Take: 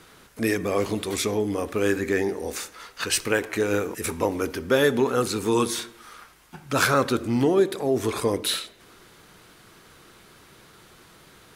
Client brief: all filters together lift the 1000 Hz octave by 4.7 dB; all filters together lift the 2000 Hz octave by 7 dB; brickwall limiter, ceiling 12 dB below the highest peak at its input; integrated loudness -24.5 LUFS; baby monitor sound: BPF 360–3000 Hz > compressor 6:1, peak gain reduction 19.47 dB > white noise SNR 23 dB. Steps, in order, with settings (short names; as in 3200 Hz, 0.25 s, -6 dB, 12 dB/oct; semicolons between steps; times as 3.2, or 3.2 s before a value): bell 1000 Hz +3 dB; bell 2000 Hz +9 dB; limiter -14 dBFS; BPF 360–3000 Hz; compressor 6:1, threshold -42 dBFS; white noise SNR 23 dB; gain +20 dB